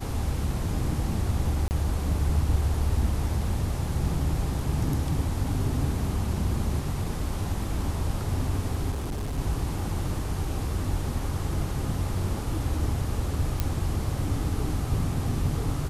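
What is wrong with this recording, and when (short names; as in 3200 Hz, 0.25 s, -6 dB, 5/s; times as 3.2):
1.68–1.71 gap 29 ms
8.91–9.39 clipped -27 dBFS
13.6 pop -11 dBFS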